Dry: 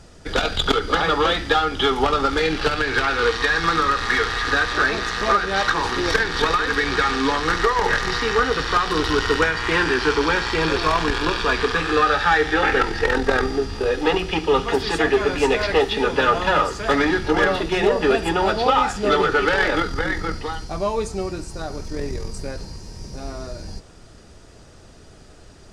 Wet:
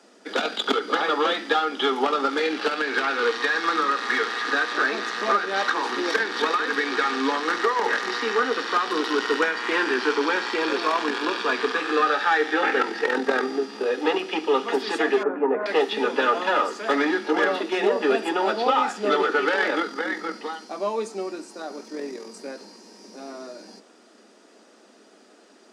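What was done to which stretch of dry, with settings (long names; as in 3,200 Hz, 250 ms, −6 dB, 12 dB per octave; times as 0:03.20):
0:15.23–0:15.66: low-pass filter 1,400 Hz 24 dB per octave
whole clip: Butterworth high-pass 210 Hz 72 dB per octave; high-shelf EQ 4,700 Hz −4.5 dB; level −3 dB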